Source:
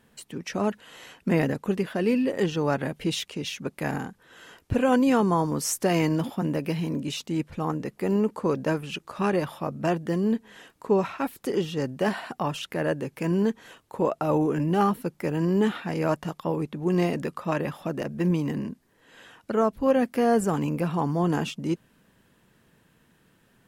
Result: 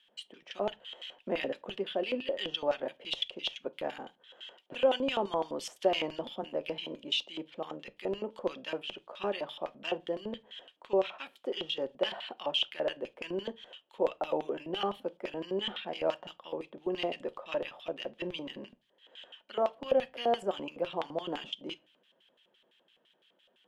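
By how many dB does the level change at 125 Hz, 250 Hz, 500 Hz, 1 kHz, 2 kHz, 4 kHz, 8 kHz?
-23.5 dB, -16.0 dB, -6.0 dB, -8.0 dB, -7.0 dB, +3.0 dB, under -15 dB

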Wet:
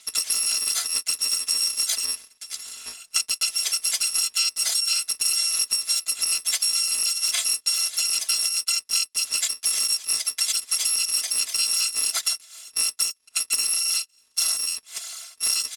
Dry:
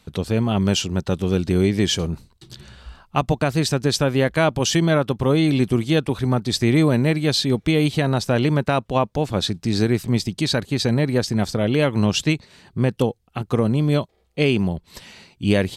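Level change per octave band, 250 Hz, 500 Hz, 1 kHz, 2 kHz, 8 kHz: under -35 dB, under -30 dB, -15.5 dB, -5.0 dB, +12.5 dB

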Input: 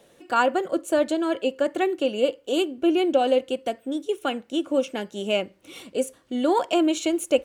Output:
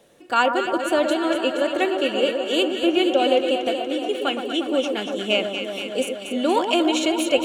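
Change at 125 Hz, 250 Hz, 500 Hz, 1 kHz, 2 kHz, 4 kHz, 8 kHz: no reading, +1.5 dB, +2.0 dB, +3.0 dB, +6.0 dB, +8.0 dB, +2.5 dB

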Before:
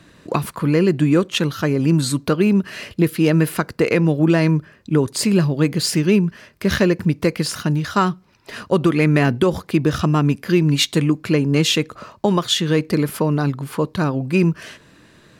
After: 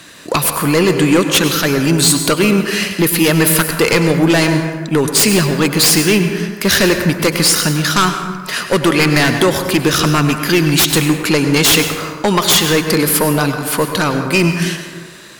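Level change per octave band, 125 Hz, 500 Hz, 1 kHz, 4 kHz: +1.5 dB, +4.5 dB, +7.5 dB, +9.5 dB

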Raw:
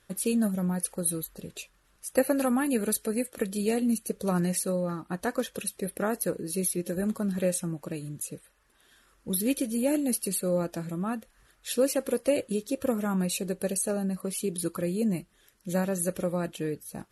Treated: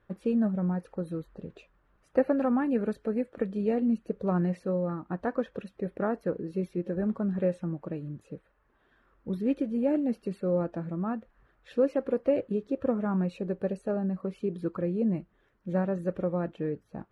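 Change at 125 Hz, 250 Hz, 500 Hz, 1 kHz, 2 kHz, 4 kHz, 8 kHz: 0.0 dB, 0.0 dB, 0.0 dB, -1.0 dB, -5.5 dB, under -15 dB, under -30 dB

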